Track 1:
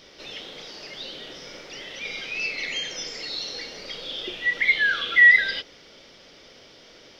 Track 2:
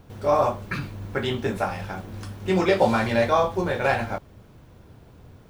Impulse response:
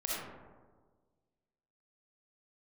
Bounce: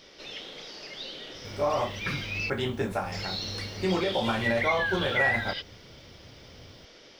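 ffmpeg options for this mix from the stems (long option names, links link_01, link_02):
-filter_complex "[0:a]acompressor=threshold=-27dB:ratio=2.5,volume=-2.5dB,asplit=3[link_01][link_02][link_03];[link_01]atrim=end=2.5,asetpts=PTS-STARTPTS,afade=type=out:start_time=2.496:duration=0.004:curve=hsin[link_04];[link_02]atrim=start=2.5:end=3.12,asetpts=PTS-STARTPTS,volume=0[link_05];[link_03]atrim=start=3.12,asetpts=PTS-STARTPTS,afade=type=in:duration=0.004:curve=hsin[link_06];[link_04][link_05][link_06]concat=n=3:v=0:a=1[link_07];[1:a]alimiter=limit=-14dB:level=0:latency=1:release=117,adelay=1350,volume=-3.5dB[link_08];[link_07][link_08]amix=inputs=2:normalize=0"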